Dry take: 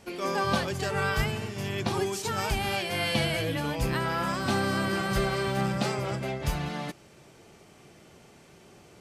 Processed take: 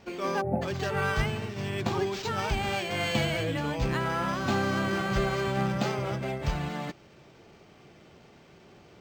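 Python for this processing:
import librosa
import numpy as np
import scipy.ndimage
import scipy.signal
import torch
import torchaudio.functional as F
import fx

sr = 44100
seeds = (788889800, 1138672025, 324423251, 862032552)

y = fx.spec_erase(x, sr, start_s=0.41, length_s=0.21, low_hz=890.0, high_hz=11000.0)
y = np.interp(np.arange(len(y)), np.arange(len(y))[::4], y[::4])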